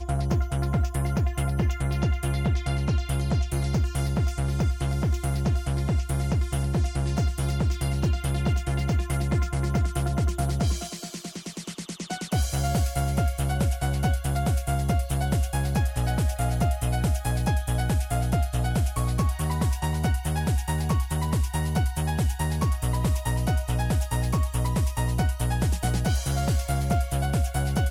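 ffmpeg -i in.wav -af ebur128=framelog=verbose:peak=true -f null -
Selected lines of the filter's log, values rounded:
Integrated loudness:
  I:         -26.4 LUFS
  Threshold: -36.4 LUFS
Loudness range:
  LRA:         1.6 LU
  Threshold: -46.4 LUFS
  LRA low:   -27.5 LUFS
  LRA high:  -26.0 LUFS
True peak:
  Peak:      -12.6 dBFS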